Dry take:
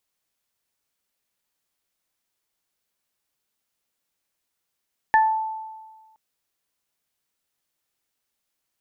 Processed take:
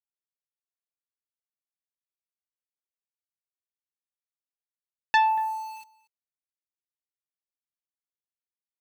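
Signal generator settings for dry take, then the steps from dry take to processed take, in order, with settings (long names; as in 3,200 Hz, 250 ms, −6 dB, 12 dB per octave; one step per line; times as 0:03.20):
harmonic partials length 1.02 s, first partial 878 Hz, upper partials −3 dB, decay 1.44 s, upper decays 0.27 s, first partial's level −12.5 dB
centre clipping without the shift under −41.5 dBFS
single-tap delay 236 ms −21.5 dB
saturating transformer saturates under 1,700 Hz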